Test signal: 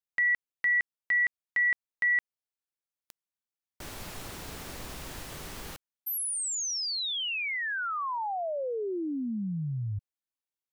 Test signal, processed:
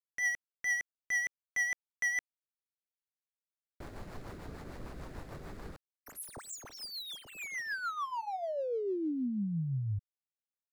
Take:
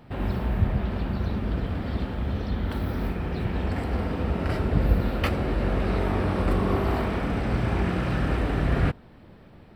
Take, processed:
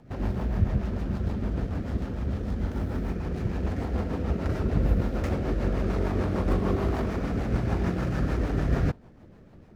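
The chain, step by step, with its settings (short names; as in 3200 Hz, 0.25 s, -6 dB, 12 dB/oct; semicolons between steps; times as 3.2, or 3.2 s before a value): median filter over 15 samples; rotary speaker horn 6.7 Hz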